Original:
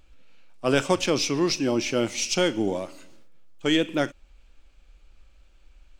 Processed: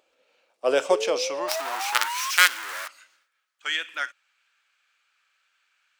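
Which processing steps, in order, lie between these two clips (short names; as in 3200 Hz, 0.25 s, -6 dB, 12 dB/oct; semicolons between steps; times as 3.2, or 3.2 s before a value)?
0.89–2.31 painted sound rise 400–1100 Hz -29 dBFS; 1.48–2.88 companded quantiser 2-bit; high-pass sweep 520 Hz -> 1500 Hz, 0.95–2.21; gain -3 dB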